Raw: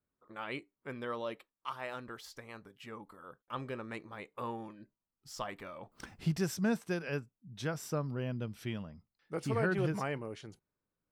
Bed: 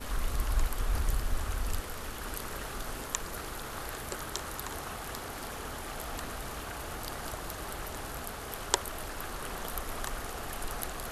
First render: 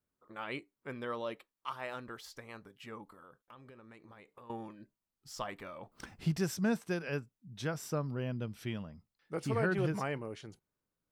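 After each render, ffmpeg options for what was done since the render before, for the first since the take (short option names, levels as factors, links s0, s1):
-filter_complex "[0:a]asettb=1/sr,asplit=3[s0][s1][s2];[s0]atrim=end=3.064[s3];[s1]atrim=start=3.06:end=4.5,asetpts=PTS-STARTPTS,afade=t=in:d=0.004:c=qsin,afade=t=out:st=1.436:d=0.004:c=qsin,acompressor=threshold=0.00282:ratio=8:attack=3.2:release=140:knee=1:detection=peak[s4];[s2]atrim=start=4.496[s5];[s3][s4]acrossfade=d=0.004:c1=hsin:c2=qsin[s6];[s6][s5]acrossfade=d=0.004:c1=qsin:c2=hsin"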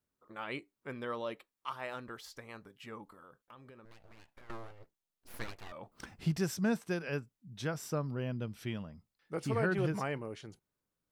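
-filter_complex "[0:a]asettb=1/sr,asplit=3[s0][s1][s2];[s0]atrim=end=3.854[s3];[s1]atrim=start=3.85:end=5.72,asetpts=PTS-STARTPTS,afade=t=in:d=0.004:c=qsin,afade=t=out:st=1.866:d=0.004:c=qsin,aeval=exprs='abs(val(0))':c=same[s4];[s2]atrim=start=5.716[s5];[s3][s4]acrossfade=d=0.004:c1=hsin:c2=qsin[s6];[s6][s5]acrossfade=d=0.004:c1=qsin:c2=hsin"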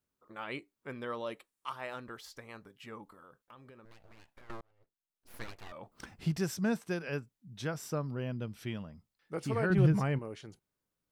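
-filter_complex "[0:a]asettb=1/sr,asplit=3[s0][s1][s2];[s0]atrim=end=1.264[s3];[s1]atrim=start=1.26:end=1.72,asetpts=PTS-STARTPTS,afade=t=in:d=0.004:c=qsin,afade=t=out:st=0.456:d=0.004:c=qsin,equalizer=f=9000:t=o:w=0.77:g=7.5[s4];[s2]atrim=start=1.716[s5];[s3][s4]acrossfade=d=0.004:c1=hsin:c2=qsin[s6];[s6][s5]acrossfade=d=0.004:c1=qsin:c2=hsin,asettb=1/sr,asplit=3[s7][s8][s9];[s7]atrim=end=9.704[s10];[s8]atrim=start=9.7:end=10.19,asetpts=PTS-STARTPTS,afade=t=in:d=0.004:c=qsin,afade=t=out:st=0.486:d=0.004:c=qsin,bass=f=250:g=12,treble=f=4000:g=-1[s11];[s9]atrim=start=10.186[s12];[s10][s11]acrossfade=d=0.004:c1=hsin:c2=qsin[s13];[s13][s12]acrossfade=d=0.004:c1=qsin:c2=hsin,asplit=2[s14][s15];[s14]atrim=end=4.61,asetpts=PTS-STARTPTS,afade=t=out:st=4.606:d=0.004:c=hsin[s16];[s15]atrim=start=4.61,asetpts=PTS-STARTPTS,afade=t=in:d=1.04[s17];[s16][s17]concat=n=2:v=0:a=1"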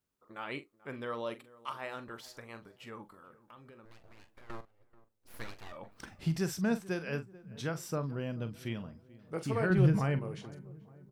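-filter_complex "[0:a]asplit=2[s0][s1];[s1]adelay=43,volume=0.251[s2];[s0][s2]amix=inputs=2:normalize=0,asplit=2[s3][s4];[s4]adelay=435,lowpass=f=1200:p=1,volume=0.112,asplit=2[s5][s6];[s6]adelay=435,lowpass=f=1200:p=1,volume=0.49,asplit=2[s7][s8];[s8]adelay=435,lowpass=f=1200:p=1,volume=0.49,asplit=2[s9][s10];[s10]adelay=435,lowpass=f=1200:p=1,volume=0.49[s11];[s3][s5][s7][s9][s11]amix=inputs=5:normalize=0"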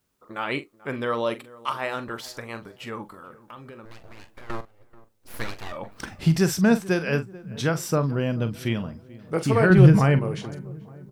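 -af "volume=3.98"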